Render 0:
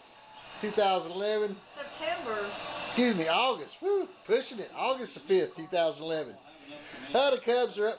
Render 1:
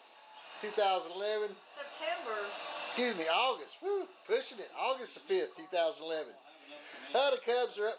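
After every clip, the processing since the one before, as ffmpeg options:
-af "highpass=400,volume=0.668"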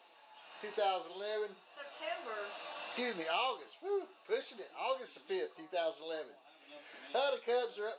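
-af "flanger=delay=5.6:depth=7.4:regen=56:speed=0.61:shape=sinusoidal"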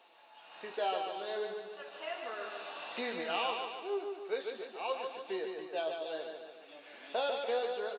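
-af "aecho=1:1:146|292|438|584|730|876|1022:0.562|0.292|0.152|0.0791|0.0411|0.0214|0.0111"

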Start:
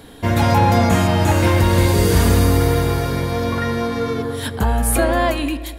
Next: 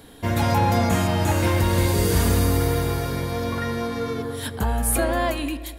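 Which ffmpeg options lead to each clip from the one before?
-af "highshelf=f=7300:g=5,volume=0.531"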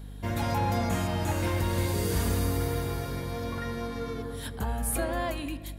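-af "aeval=exprs='val(0)+0.0251*(sin(2*PI*50*n/s)+sin(2*PI*2*50*n/s)/2+sin(2*PI*3*50*n/s)/3+sin(2*PI*4*50*n/s)/4+sin(2*PI*5*50*n/s)/5)':c=same,volume=0.398"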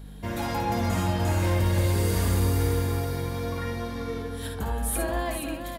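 -af "aecho=1:1:55|66|477:0.473|0.376|0.422"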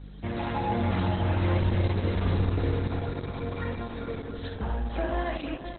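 -ar 48000 -c:a libopus -b:a 8k

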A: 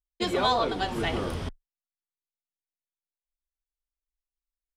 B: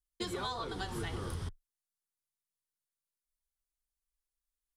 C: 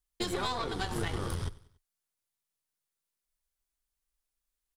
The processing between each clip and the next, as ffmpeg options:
-af "equalizer=f=100:t=o:w=0.67:g=4,equalizer=f=250:t=o:w=0.67:g=-7,equalizer=f=630:t=o:w=0.67:g=-11,equalizer=f=2500:t=o:w=0.67:g=-8,equalizer=f=10000:t=o:w=0.67:g=6,acompressor=threshold=0.0178:ratio=6"
-af "aeval=exprs='(tanh(35.5*val(0)+0.7)-tanh(0.7))/35.5':c=same,aecho=1:1:95|190|285:0.1|0.046|0.0212,volume=2.51"

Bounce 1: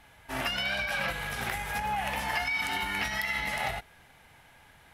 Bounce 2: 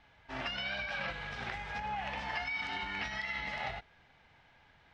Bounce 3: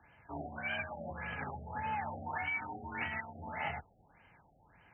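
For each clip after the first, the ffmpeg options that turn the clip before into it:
-af "lowpass=f=5200:w=0.5412,lowpass=f=5200:w=1.3066,volume=0.473"
-af "afreqshift=27,afftfilt=real='re*lt(b*sr/1024,790*pow(3200/790,0.5+0.5*sin(2*PI*1.7*pts/sr)))':imag='im*lt(b*sr/1024,790*pow(3200/790,0.5+0.5*sin(2*PI*1.7*pts/sr)))':win_size=1024:overlap=0.75,volume=1.12"

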